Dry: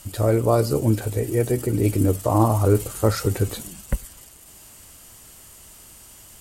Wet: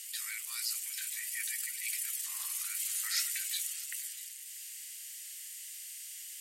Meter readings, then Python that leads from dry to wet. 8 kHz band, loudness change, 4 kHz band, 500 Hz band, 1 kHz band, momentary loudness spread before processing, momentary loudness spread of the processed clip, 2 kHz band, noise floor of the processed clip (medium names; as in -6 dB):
+1.0 dB, -14.0 dB, +0.5 dB, under -40 dB, -29.5 dB, 12 LU, 12 LU, -2.5 dB, -46 dBFS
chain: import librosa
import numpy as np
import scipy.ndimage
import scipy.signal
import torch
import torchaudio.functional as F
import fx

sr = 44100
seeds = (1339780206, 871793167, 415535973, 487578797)

y = scipy.signal.sosfilt(scipy.signal.ellip(4, 1.0, 70, 1900.0, 'highpass', fs=sr, output='sos'), x)
y = fx.transient(y, sr, attack_db=-5, sustain_db=2)
y = y + 10.0 ** (-20.5 / 20.0) * np.pad(y, (int(640 * sr / 1000.0), 0))[:len(y)]
y = y * 10.0 ** (2.0 / 20.0)